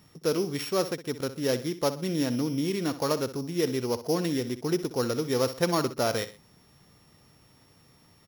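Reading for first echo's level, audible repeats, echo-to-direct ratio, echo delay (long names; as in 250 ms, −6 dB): −13.5 dB, 2, −13.0 dB, 63 ms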